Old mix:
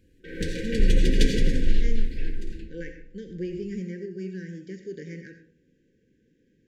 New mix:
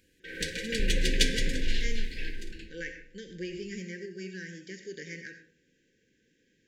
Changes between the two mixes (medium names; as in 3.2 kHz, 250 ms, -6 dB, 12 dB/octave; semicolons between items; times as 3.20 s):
first sound: send off; master: add tilt shelf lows -8.5 dB, about 810 Hz